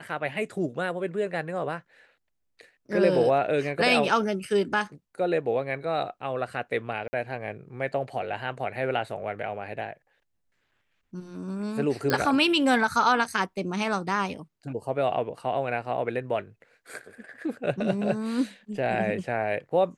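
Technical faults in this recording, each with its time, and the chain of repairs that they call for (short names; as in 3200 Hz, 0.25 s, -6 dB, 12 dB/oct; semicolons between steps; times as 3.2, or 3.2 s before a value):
7.08–7.13 gap 50 ms
12.1 pop -11 dBFS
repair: de-click; interpolate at 7.08, 50 ms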